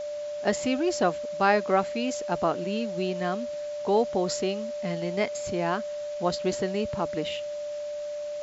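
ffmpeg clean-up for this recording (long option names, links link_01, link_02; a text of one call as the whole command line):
ffmpeg -i in.wav -af "bandreject=frequency=590:width=30,afwtdn=0.004" out.wav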